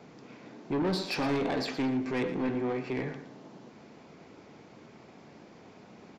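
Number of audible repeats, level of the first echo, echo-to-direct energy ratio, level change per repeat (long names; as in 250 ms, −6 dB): 2, −12.5 dB, −12.0 dB, −10.0 dB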